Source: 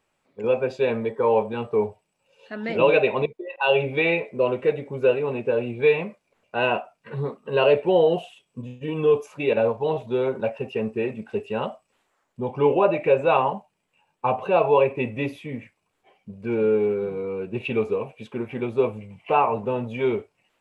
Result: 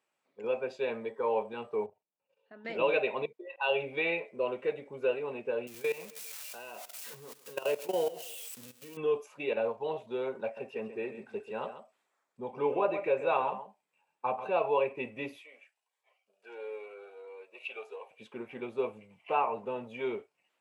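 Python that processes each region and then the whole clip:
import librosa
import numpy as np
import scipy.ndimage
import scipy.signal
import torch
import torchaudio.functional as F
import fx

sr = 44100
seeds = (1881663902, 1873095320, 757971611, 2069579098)

y = fx.chain(x, sr, fx.lowpass(hz=1000.0, slope=6),
    fx.level_steps(step_db=13), at=(1.86, 2.65))
y = fx.chain(y, sr, fx.crossing_spikes(level_db=-22.0),
    fx.level_steps(step_db=18),
    fx.echo_feedback(ms=133, feedback_pct=44, wet_db=-19.0), at=(5.67, 8.97))
y = fx.chain(y, sr, fx.notch(hz=2900.0, q=11.0),
    fx.echo_single(ms=136, db=-11.5), at=(10.43, 14.54))
y = fx.chain(y, sr, fx.highpass(hz=560.0, slope=24),
    fx.notch_cascade(direction='rising', hz=1.4), at=(15.42, 18.11))
y = scipy.signal.sosfilt(scipy.signal.bessel(2, 180.0, 'highpass', norm='mag', fs=sr, output='sos'), y)
y = fx.low_shelf(y, sr, hz=270.0, db=-8.0)
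y = y * 10.0 ** (-8.0 / 20.0)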